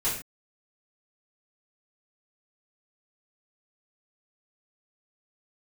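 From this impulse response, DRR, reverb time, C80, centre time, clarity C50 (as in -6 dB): -11.0 dB, not exponential, 9.0 dB, 36 ms, 5.0 dB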